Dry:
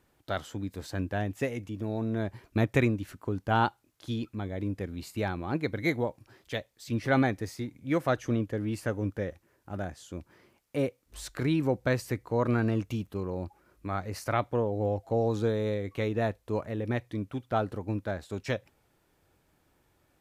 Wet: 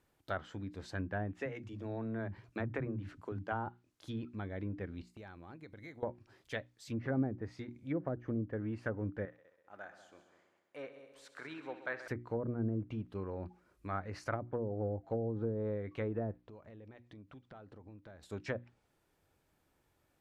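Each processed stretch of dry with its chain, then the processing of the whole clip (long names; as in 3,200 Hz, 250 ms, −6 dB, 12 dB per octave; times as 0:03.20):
0:01.33–0:03.67: multiband delay without the direct sound highs, lows 40 ms, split 220 Hz + downward compressor 2 to 1, threshold −28 dBFS
0:05.02–0:06.03: noise gate −44 dBFS, range −15 dB + downward compressor 5 to 1, threshold −42 dBFS
0:09.25–0:12.08: high-pass filter 1,100 Hz + spectral tilt −4.5 dB per octave + echo machine with several playback heads 65 ms, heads all three, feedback 53%, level −14.5 dB
0:16.42–0:18.23: downward compressor 8 to 1, threshold −43 dBFS + high-frequency loss of the air 100 metres
whole clip: treble cut that deepens with the level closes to 430 Hz, closed at −23.5 dBFS; dynamic equaliser 1,600 Hz, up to +6 dB, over −54 dBFS, Q 1.9; mains-hum notches 60/120/180/240/300/360 Hz; level −6.5 dB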